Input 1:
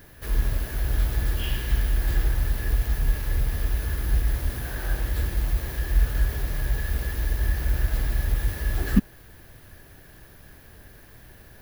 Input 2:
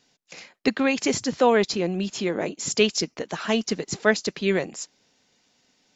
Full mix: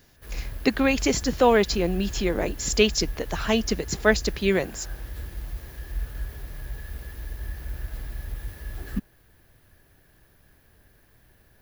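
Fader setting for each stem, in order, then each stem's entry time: -10.0, +0.5 dB; 0.00, 0.00 s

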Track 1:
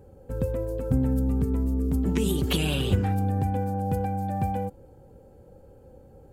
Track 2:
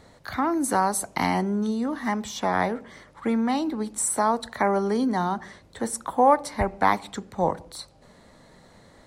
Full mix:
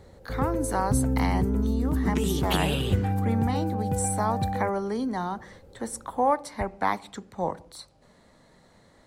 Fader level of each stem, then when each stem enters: -1.0, -5.0 dB; 0.00, 0.00 s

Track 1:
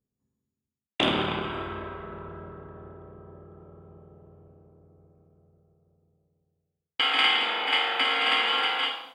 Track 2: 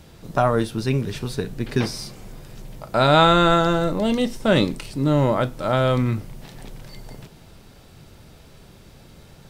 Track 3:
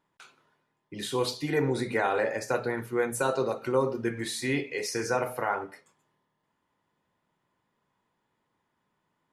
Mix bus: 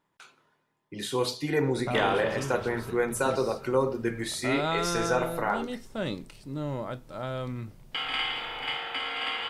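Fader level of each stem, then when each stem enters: -8.0, -14.5, +0.5 dB; 0.95, 1.50, 0.00 s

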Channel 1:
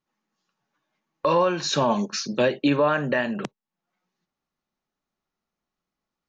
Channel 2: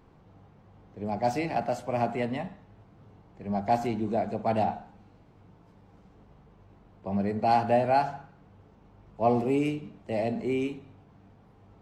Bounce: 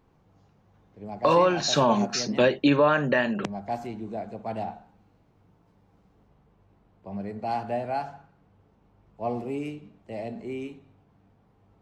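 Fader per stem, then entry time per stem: +0.5, -6.0 dB; 0.00, 0.00 s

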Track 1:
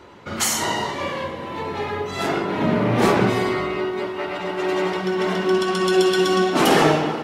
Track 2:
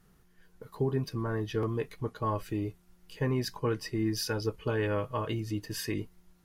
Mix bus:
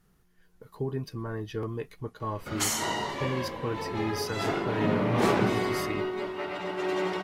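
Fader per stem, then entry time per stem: -7.0, -2.5 dB; 2.20, 0.00 s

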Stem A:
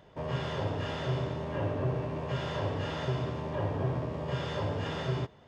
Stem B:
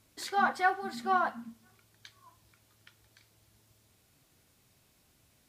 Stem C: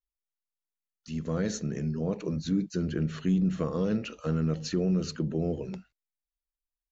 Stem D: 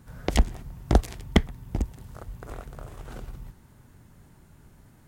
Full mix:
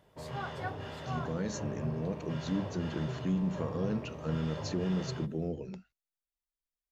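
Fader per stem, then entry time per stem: -8.0 dB, -13.5 dB, -5.5 dB, off; 0.00 s, 0.00 s, 0.00 s, off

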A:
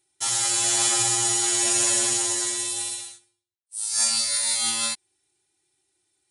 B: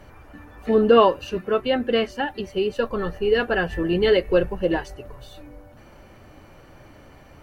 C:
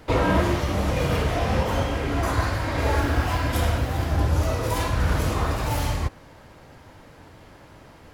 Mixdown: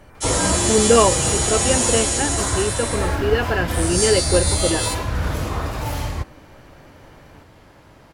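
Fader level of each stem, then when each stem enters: +0.5, 0.0, -0.5 dB; 0.00, 0.00, 0.15 s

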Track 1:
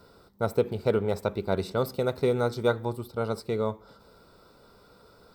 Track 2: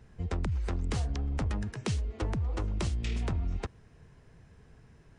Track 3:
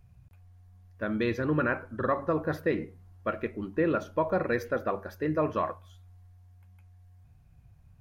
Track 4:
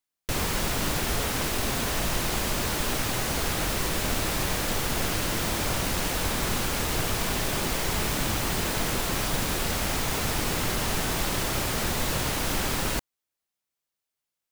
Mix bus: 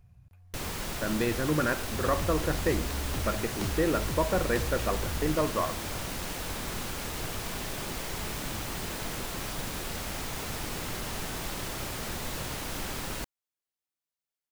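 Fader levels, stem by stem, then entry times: off, -3.5 dB, -0.5 dB, -8.0 dB; off, 1.75 s, 0.00 s, 0.25 s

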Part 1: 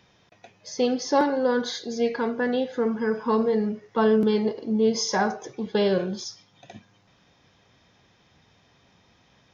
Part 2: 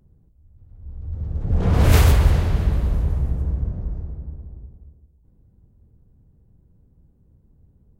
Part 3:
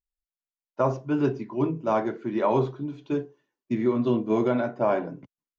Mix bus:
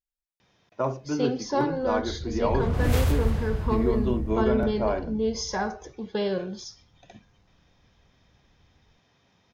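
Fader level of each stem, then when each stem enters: -5.0, -9.0, -3.5 dB; 0.40, 1.00, 0.00 s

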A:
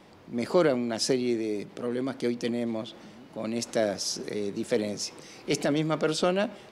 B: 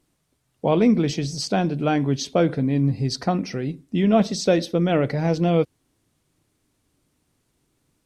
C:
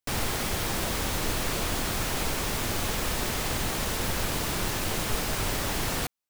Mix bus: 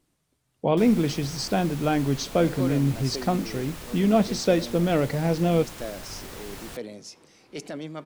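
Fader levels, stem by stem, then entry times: -9.5, -2.5, -11.5 dB; 2.05, 0.00, 0.70 s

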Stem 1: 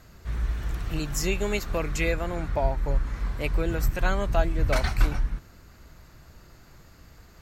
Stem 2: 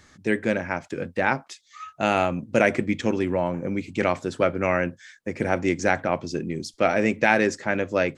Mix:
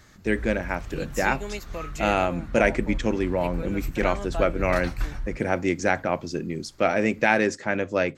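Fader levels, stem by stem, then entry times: -6.5, -1.0 dB; 0.00, 0.00 s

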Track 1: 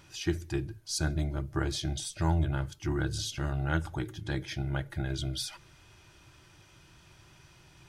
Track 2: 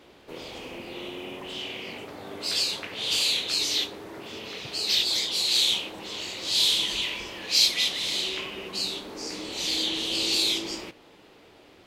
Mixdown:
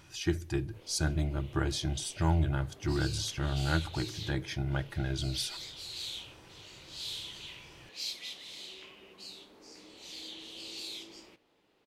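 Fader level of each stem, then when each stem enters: 0.0, -17.5 dB; 0.00, 0.45 s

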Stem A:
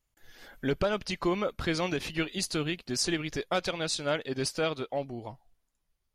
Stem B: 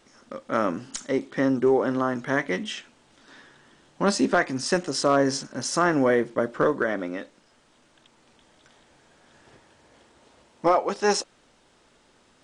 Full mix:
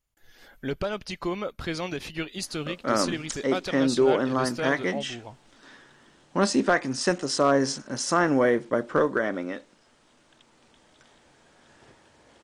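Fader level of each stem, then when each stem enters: -1.5, -0.5 dB; 0.00, 2.35 s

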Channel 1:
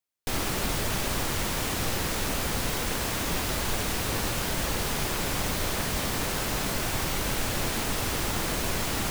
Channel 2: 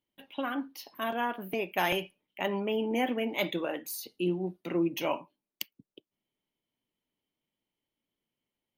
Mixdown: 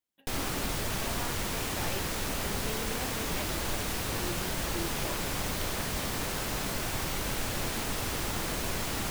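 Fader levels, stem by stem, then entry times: -4.0, -11.5 dB; 0.00, 0.00 s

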